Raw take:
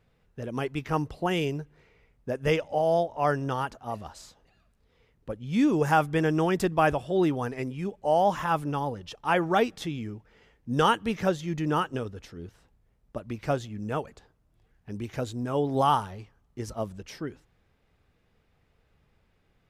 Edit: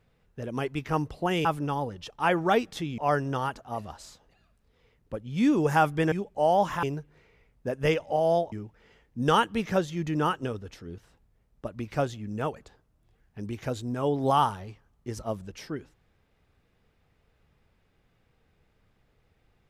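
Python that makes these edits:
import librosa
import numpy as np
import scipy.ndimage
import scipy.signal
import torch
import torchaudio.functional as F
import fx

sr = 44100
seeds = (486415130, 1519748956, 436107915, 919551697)

y = fx.edit(x, sr, fx.swap(start_s=1.45, length_s=1.69, other_s=8.5, other_length_s=1.53),
    fx.cut(start_s=6.28, length_s=1.51), tone=tone)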